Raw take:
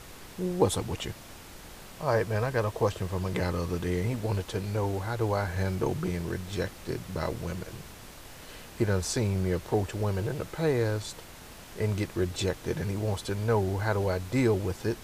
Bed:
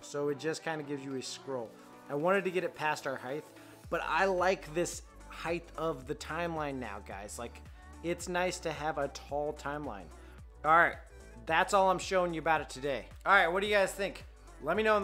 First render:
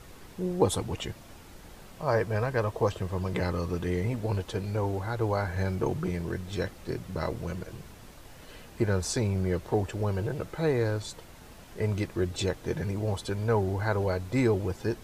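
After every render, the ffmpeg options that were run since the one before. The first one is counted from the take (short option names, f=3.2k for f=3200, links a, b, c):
-af "afftdn=nr=6:nf=-47"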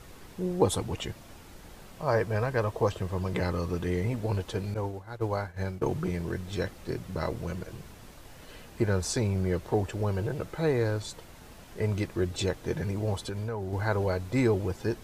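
-filter_complex "[0:a]asettb=1/sr,asplit=3[a][b][c];[a]atrim=end=4.744[d];[b]atrim=start=4.74:end=5.82,asetpts=PTS-STARTPTS,afade=t=in:d=0.004:c=qsin,afade=t=out:st=1.076:d=0.004:c=qsin,agate=range=-33dB:threshold=-25dB:ratio=3:release=100:detection=peak[e];[c]atrim=start=5.816[f];[d][e]acrossfade=d=0.004:c1=hsin:c2=qsin[g];[g][f]acrossfade=d=0.004:c1=qsin:c2=hsin,asettb=1/sr,asplit=3[h][i][j];[h]atrim=end=13.234[k];[i]atrim=start=13.23:end=13.73,asetpts=PTS-STARTPTS,afade=t=in:d=0.004:c=qsin,afade=t=out:st=0.496:d=0.004:c=qsin,acompressor=threshold=-30dB:ratio=6:attack=3.2:release=140:knee=1:detection=peak[l];[j]atrim=start=13.726[m];[k][l]acrossfade=d=0.004:c1=hsin:c2=qsin[n];[n][m]acrossfade=d=0.004:c1=qsin:c2=hsin"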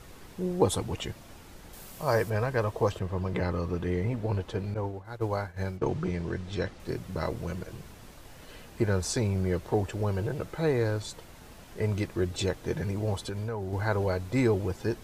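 -filter_complex "[0:a]asettb=1/sr,asplit=3[a][b][c];[a]atrim=end=1.734[d];[b]atrim=start=1.73:end=2.3,asetpts=PTS-STARTPTS,afade=t=in:d=0.004:c=qsin,afade=t=out:st=0.566:d=0.004:c=qsin,aemphasis=mode=production:type=50kf[e];[c]atrim=start=2.296[f];[d][e]acrossfade=d=0.004:c1=hsin:c2=qsin[g];[g][f]acrossfade=d=0.004:c1=qsin:c2=hsin,asettb=1/sr,asplit=3[h][i][j];[h]atrim=end=2.994[k];[i]atrim=start=2.99:end=5.05,asetpts=PTS-STARTPTS,afade=t=in:d=0.004:c=qsin,afade=t=out:st=2.056:d=0.004:c=qsin,highshelf=f=4.8k:g=-11[l];[j]atrim=start=5.046[m];[k][l]acrossfade=d=0.004:c1=hsin:c2=qsin[n];[n][m]acrossfade=d=0.004:c1=qsin:c2=hsin,asettb=1/sr,asplit=3[o][p][q];[o]atrim=end=5.774[r];[p]atrim=start=5.77:end=6.8,asetpts=PTS-STARTPTS,afade=t=in:d=0.004:c=qsin,afade=t=out:st=1.026:d=0.004:c=qsin,lowpass=6.2k[s];[q]atrim=start=6.796[t];[r][s]acrossfade=d=0.004:c1=hsin:c2=qsin[u];[u][t]acrossfade=d=0.004:c1=qsin:c2=hsin"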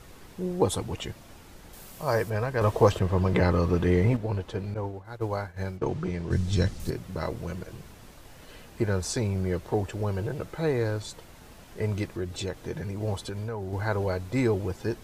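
-filter_complex "[0:a]asettb=1/sr,asplit=3[a][b][c];[a]atrim=end=2.614[d];[b]atrim=start=2.61:end=4.17,asetpts=PTS-STARTPTS,afade=t=in:d=0.004:c=qsin,afade=t=out:st=1.556:d=0.004:c=qsin,acontrast=82[e];[c]atrim=start=4.166[f];[d][e]acrossfade=d=0.004:c1=hsin:c2=qsin[g];[g][f]acrossfade=d=0.004:c1=qsin:c2=hsin,asplit=3[h][i][j];[h]afade=t=out:st=6.3:d=0.02[k];[i]bass=f=250:g=12,treble=f=4k:g=13,afade=t=in:st=6.3:d=0.02,afade=t=out:st=6.89:d=0.02[l];[j]afade=t=in:st=6.89:d=0.02[m];[k][l][m]amix=inputs=3:normalize=0,asettb=1/sr,asplit=3[n][o][p];[n]atrim=end=12.054[q];[o]atrim=start=12.05:end=13.01,asetpts=PTS-STARTPTS,afade=t=in:d=0.004:c=qsin,afade=t=out:st=0.956:d=0.004:c=qsin,acompressor=threshold=-34dB:ratio=1.5:attack=3.2:release=140:knee=1:detection=peak[r];[p]atrim=start=13.006[s];[q][r]acrossfade=d=0.004:c1=hsin:c2=qsin[t];[t][s]acrossfade=d=0.004:c1=qsin:c2=hsin"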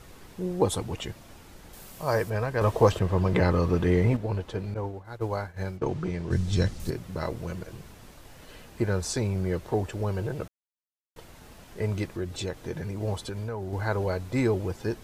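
-filter_complex "[0:a]asplit=3[a][b][c];[a]atrim=end=10.48,asetpts=PTS-STARTPTS,afade=t=out:st=10.476:d=0.004:c=hsin[d];[b]atrim=start=10.48:end=11.16,asetpts=PTS-STARTPTS,volume=0[e];[c]atrim=start=11.16,asetpts=PTS-STARTPTS,afade=t=in:d=0.004:c=hsin[f];[d][e][f]concat=n=3:v=0:a=1"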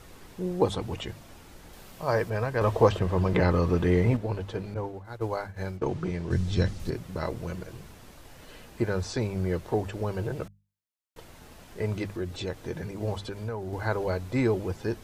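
-filter_complex "[0:a]acrossover=split=5400[a][b];[b]acompressor=threshold=-54dB:ratio=4:attack=1:release=60[c];[a][c]amix=inputs=2:normalize=0,bandreject=f=50:t=h:w=6,bandreject=f=100:t=h:w=6,bandreject=f=150:t=h:w=6,bandreject=f=200:t=h:w=6"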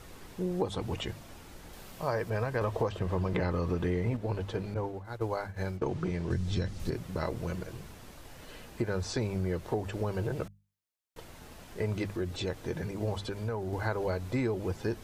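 -af "acompressor=threshold=-27dB:ratio=6"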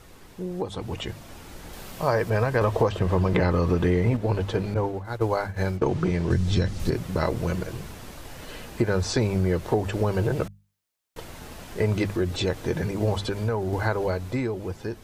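-af "dynaudnorm=f=230:g=11:m=8.5dB"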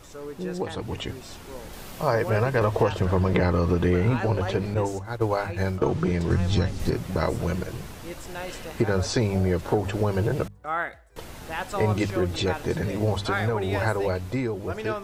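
-filter_complex "[1:a]volume=-4dB[a];[0:a][a]amix=inputs=2:normalize=0"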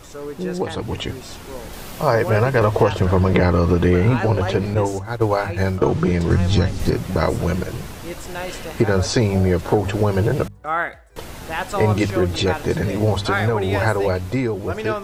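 -af "volume=6dB"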